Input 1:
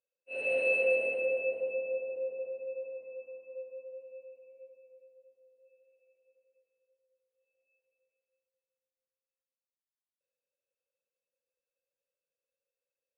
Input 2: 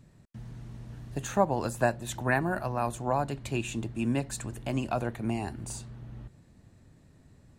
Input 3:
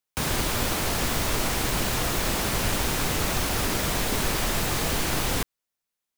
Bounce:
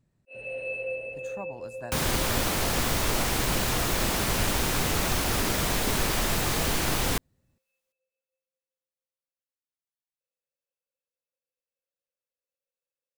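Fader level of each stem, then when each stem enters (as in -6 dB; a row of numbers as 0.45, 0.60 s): -5.5, -14.5, -0.5 dB; 0.00, 0.00, 1.75 s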